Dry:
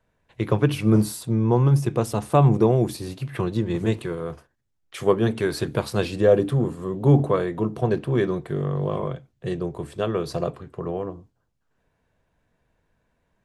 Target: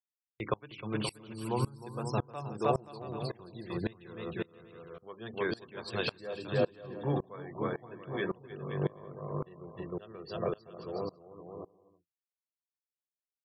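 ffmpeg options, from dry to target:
-filter_complex "[0:a]lowpass=f=3000:p=1,afftfilt=real='re*gte(hypot(re,im),0.0141)':imag='im*gte(hypot(re,im),0.0141)':win_size=1024:overlap=0.75,agate=range=0.0398:threshold=0.02:ratio=16:detection=peak,highpass=f=100:p=1,acrossover=split=590[s0][s1];[s0]alimiter=limit=0.119:level=0:latency=1:release=421[s2];[s2][s1]amix=inputs=2:normalize=0,crystalizer=i=5.5:c=0,asplit=2[s3][s4];[s4]aecho=0:1:310|527|678.9|785.2|859.7:0.631|0.398|0.251|0.158|0.1[s5];[s3][s5]amix=inputs=2:normalize=0,aeval=exprs='val(0)*pow(10,-26*if(lt(mod(-1.8*n/s,1),2*abs(-1.8)/1000),1-mod(-1.8*n/s,1)/(2*abs(-1.8)/1000),(mod(-1.8*n/s,1)-2*abs(-1.8)/1000)/(1-2*abs(-1.8)/1000))/20)':c=same,volume=0.596"

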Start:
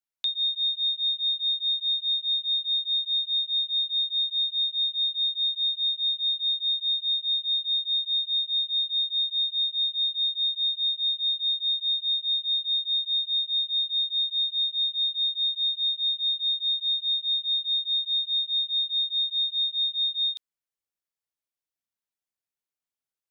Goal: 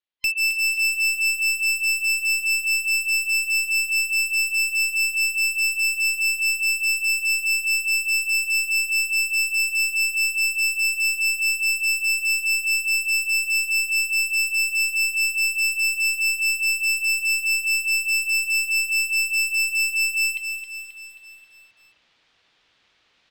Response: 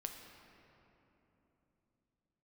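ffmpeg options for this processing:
-filter_complex "[0:a]afftfilt=real='real(if(lt(b,960),b+48*(1-2*mod(floor(b/48),2)),b),0)':imag='imag(if(lt(b,960),b+48*(1-2*mod(floor(b/48),2)),b),0)':win_size=2048:overlap=0.75,lowpass=f=3500:w=0.5412,lowpass=f=3500:w=1.3066,areverse,acompressor=mode=upward:threshold=0.00447:ratio=2.5,areverse,aeval=exprs='clip(val(0),-1,0.0316)':c=same,crystalizer=i=4.5:c=0,asplit=2[s0][s1];[s1]aecho=0:1:267|534|801|1068|1335|1602:0.398|0.211|0.112|0.0593|0.0314|0.0166[s2];[s0][s2]amix=inputs=2:normalize=0"

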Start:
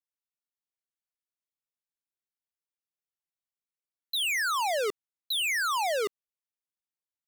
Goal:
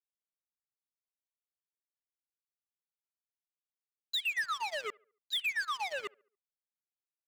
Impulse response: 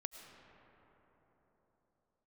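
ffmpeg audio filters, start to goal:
-filter_complex "[0:a]afftfilt=real='re*pow(10,15/40*sin(2*PI*(1.4*log(max(b,1)*sr/1024/100)/log(2)-(2.4)*(pts-256)/sr)))':imag='im*pow(10,15/40*sin(2*PI*(1.4*log(max(b,1)*sr/1024/100)/log(2)-(2.4)*(pts-256)/sr)))':win_size=1024:overlap=0.75,bandpass=f=2400:t=q:w=0.7:csg=0,asplit=2[s0][s1];[s1]acrusher=bits=4:mix=0:aa=0.000001,volume=0.355[s2];[s0][s2]amix=inputs=2:normalize=0,afwtdn=0.0178,acompressor=threshold=0.0355:ratio=4,equalizer=f=2000:w=4.7:g=2.5,asplit=2[s3][s4];[s4]adelay=70,lowpass=f=2000:p=1,volume=0.126,asplit=2[s5][s6];[s6]adelay=70,lowpass=f=2000:p=1,volume=0.47,asplit=2[s7][s8];[s8]adelay=70,lowpass=f=2000:p=1,volume=0.47,asplit=2[s9][s10];[s10]adelay=70,lowpass=f=2000:p=1,volume=0.47[s11];[s5][s7][s9][s11]amix=inputs=4:normalize=0[s12];[s3][s12]amix=inputs=2:normalize=0,aeval=exprs='0.0841*(cos(1*acos(clip(val(0)/0.0841,-1,1)))-cos(1*PI/2))+0.00668*(cos(7*acos(clip(val(0)/0.0841,-1,1)))-cos(7*PI/2))':c=same,volume=0.668"

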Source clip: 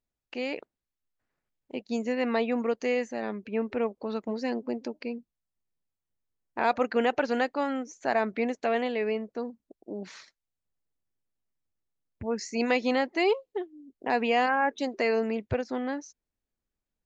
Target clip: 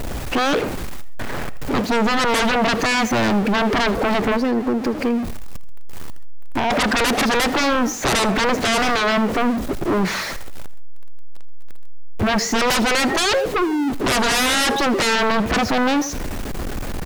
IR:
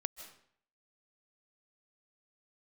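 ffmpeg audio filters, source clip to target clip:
-filter_complex "[0:a]aeval=exprs='val(0)+0.5*0.0126*sgn(val(0))':c=same[s0];[1:a]atrim=start_sample=2205,atrim=end_sample=6174[s1];[s0][s1]afir=irnorm=-1:irlink=0,asplit=3[s2][s3][s4];[s2]afade=t=out:st=4.36:d=0.02[s5];[s3]acompressor=threshold=0.0112:ratio=3,afade=t=in:st=4.36:d=0.02,afade=t=out:st=6.7:d=0.02[s6];[s4]afade=t=in:st=6.7:d=0.02[s7];[s5][s6][s7]amix=inputs=3:normalize=0,highshelf=f=2400:g=-11,aeval=exprs='0.178*sin(PI/2*8.91*val(0)/0.178)':c=same,aecho=1:1:80|160:0.112|0.0292"

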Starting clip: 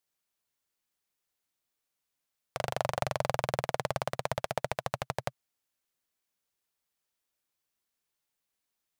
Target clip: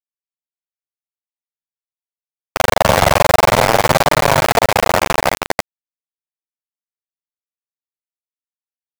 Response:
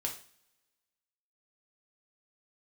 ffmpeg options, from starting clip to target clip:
-filter_complex "[0:a]aecho=1:1:43|44|186|318:0.668|0.119|0.251|0.668,asplit=2[s0][s1];[1:a]atrim=start_sample=2205,lowpass=2600[s2];[s1][s2]afir=irnorm=-1:irlink=0,volume=0.299[s3];[s0][s3]amix=inputs=2:normalize=0,acontrast=69,flanger=delay=6.4:depth=5.9:regen=-4:speed=0.48:shape=triangular,aeval=exprs='val(0)*gte(abs(val(0)),0.0668)':c=same,apsyclip=6.68,areverse,acompressor=mode=upward:threshold=0.1:ratio=2.5,areverse,volume=0.841"

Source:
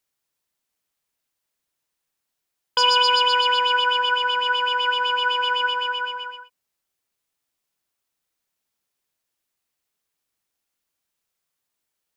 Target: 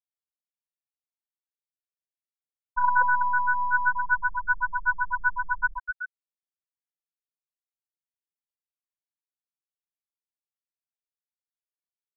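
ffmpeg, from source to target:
-af "acrusher=bits=3:dc=4:mix=0:aa=0.000001,highshelf=f=2000:t=q:w=3:g=-11.5,afftfilt=real='re*gte(hypot(re,im),0.562)':imag='im*gte(hypot(re,im),0.562)':win_size=1024:overlap=0.75"

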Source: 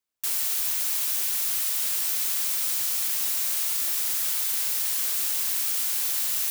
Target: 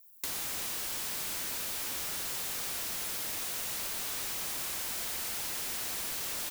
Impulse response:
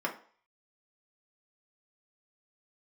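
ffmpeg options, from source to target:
-filter_complex "[0:a]asettb=1/sr,asplit=3[s0][s1][s2];[s0]atrim=end=2.904[s3];[s1]atrim=start=2.9:end=3.64,asetpts=PTS-STARTPTS,afade=t=in:d=0.004:c=qsin,afade=t=out:st=0.736:d=0.004:c=qsin,highshelf=f=4200:g=-5.5[s4];[s2]atrim=start=3.636[s5];[s3][s4]acrossfade=d=0.004:c1=hsin:c2=qsin[s6];[s6][s5]acrossfade=d=0.004:c1=qsin:c2=hsin,asettb=1/sr,asplit=3[s7][s8][s9];[s7]atrim=end=4.874[s10];[s8]atrim=start=4.87:end=5.68,asetpts=PTS-STARTPTS,afade=t=in:d=0.004:c=qsin,afade=t=out:st=0.806:d=0.004:c=qsin,asuperstop=centerf=4500:order=12:qfactor=1.3[s11];[s9]atrim=start=5.676[s12];[s10][s11]acrossfade=d=0.004:c1=hsin:c2=qsin[s13];[s13][s12]acrossfade=d=0.004:c1=qsin:c2=hsin,afreqshift=-180,aemphasis=mode=production:type=50fm,asplit=2[s14][s15];[s15]aecho=0:1:126|252|378|504:0.501|0.18|0.065|0.0234[s16];[s14][s16]amix=inputs=2:normalize=0,aeval=exprs='val(0)*sin(2*PI*93*n/s)':c=same,crystalizer=i=8.5:c=0,aeval=exprs='0.2*(abs(mod(val(0)/0.2+3,4)-2)-1)':c=same,acompressor=threshold=0.0447:ratio=6,volume=0.398"

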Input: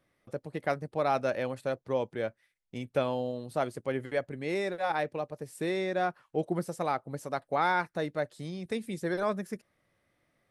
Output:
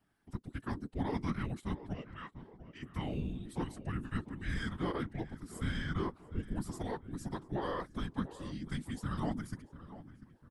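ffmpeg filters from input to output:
-filter_complex "[0:a]alimiter=limit=0.0794:level=0:latency=1:release=37,afreqshift=-400,asettb=1/sr,asplit=3[s0][s1][s2];[s0]atrim=end=1.944[s3];[s1]atrim=start=1.94:end=2.83,asetpts=PTS-STARTPTS,afade=t=in:d=0.004:c=qsin,afade=t=out:st=0.886:d=0.004:c=qsin,highpass=510,lowpass=5400[s4];[s2]atrim=start=2.826[s5];[s3][s4]acrossfade=d=0.004:c1=hsin:c2=qsin[s6];[s6][s5]acrossfade=d=0.004:c1=qsin:c2=hsin,asplit=2[s7][s8];[s8]adelay=695,lowpass=f=2000:p=1,volume=0.188,asplit=2[s9][s10];[s10]adelay=695,lowpass=f=2000:p=1,volume=0.47,asplit=2[s11][s12];[s12]adelay=695,lowpass=f=2000:p=1,volume=0.47,asplit=2[s13][s14];[s14]adelay=695,lowpass=f=2000:p=1,volume=0.47[s15];[s7][s9][s11][s13][s15]amix=inputs=5:normalize=0,afftfilt=real='hypot(re,im)*cos(2*PI*random(0))':imag='hypot(re,im)*sin(2*PI*random(1))':win_size=512:overlap=0.75,volume=1.33"

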